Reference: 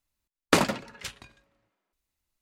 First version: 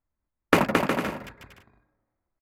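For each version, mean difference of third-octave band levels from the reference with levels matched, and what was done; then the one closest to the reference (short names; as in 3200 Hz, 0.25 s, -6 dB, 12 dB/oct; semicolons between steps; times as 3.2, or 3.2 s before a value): 11.0 dB: Wiener smoothing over 15 samples; band shelf 5900 Hz -10 dB; on a send: bouncing-ball echo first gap 0.22 s, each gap 0.65×, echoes 5; on the sum: gain +2 dB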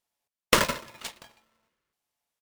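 5.5 dB: HPF 78 Hz 12 dB/oct; downsampling 32000 Hz; polarity switched at an audio rate 780 Hz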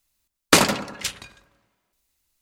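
3.5 dB: high shelf 2500 Hz +9 dB; hard clip -5.5 dBFS, distortion -19 dB; analogue delay 98 ms, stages 1024, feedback 51%, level -11 dB; gain +4 dB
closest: third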